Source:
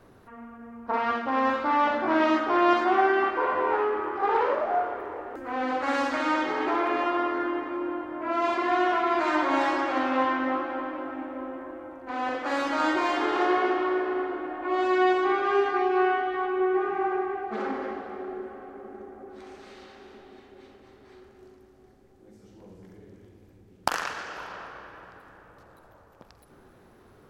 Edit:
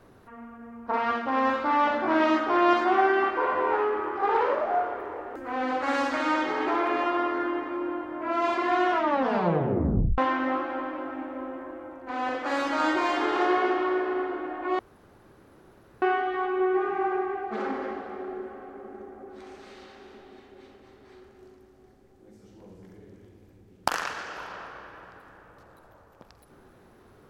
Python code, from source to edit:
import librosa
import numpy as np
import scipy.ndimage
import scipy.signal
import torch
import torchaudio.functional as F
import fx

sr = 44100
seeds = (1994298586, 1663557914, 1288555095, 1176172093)

y = fx.edit(x, sr, fx.tape_stop(start_s=8.93, length_s=1.25),
    fx.room_tone_fill(start_s=14.79, length_s=1.23), tone=tone)